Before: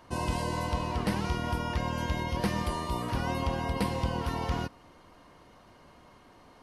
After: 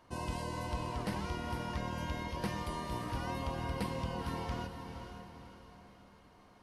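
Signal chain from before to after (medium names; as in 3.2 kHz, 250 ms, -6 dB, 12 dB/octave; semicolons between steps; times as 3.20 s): echo that smears into a reverb 492 ms, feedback 45%, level -7.5 dB; trim -7.5 dB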